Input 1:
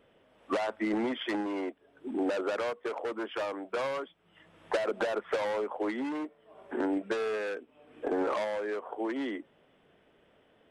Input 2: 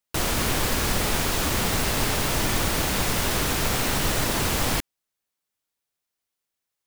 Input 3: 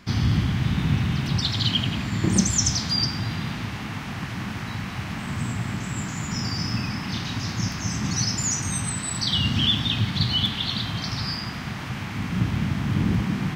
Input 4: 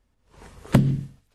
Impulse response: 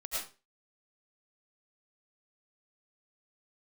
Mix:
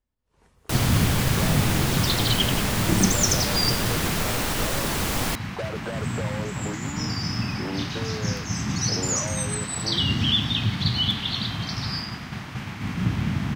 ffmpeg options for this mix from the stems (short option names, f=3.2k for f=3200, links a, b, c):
-filter_complex "[0:a]adelay=850,volume=-3.5dB[a];[1:a]adelay=550,volume=-2dB[b];[2:a]agate=range=-33dB:threshold=-28dB:ratio=3:detection=peak,adelay=650,volume=-0.5dB[c];[3:a]volume=-14dB[d];[a][b][c][d]amix=inputs=4:normalize=0"